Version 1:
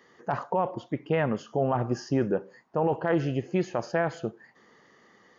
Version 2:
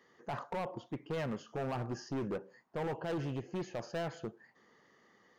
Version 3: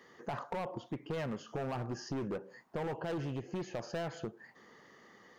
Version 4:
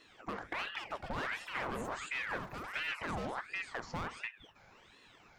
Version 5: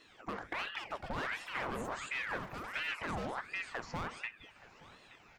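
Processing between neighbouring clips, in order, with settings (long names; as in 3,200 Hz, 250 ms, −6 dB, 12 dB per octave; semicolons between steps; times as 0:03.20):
hard clipping −25.5 dBFS, distortion −8 dB; level −7.5 dB
downward compressor 3 to 1, threshold −45 dBFS, peak gain reduction 8 dB; level +7 dB
delay with pitch and tempo change per echo 382 ms, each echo +6 semitones, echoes 3, each echo −6 dB; ring modulator whose carrier an LFO sweeps 1,300 Hz, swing 75%, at 1.4 Hz; level +1 dB
repeating echo 874 ms, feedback 37%, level −20 dB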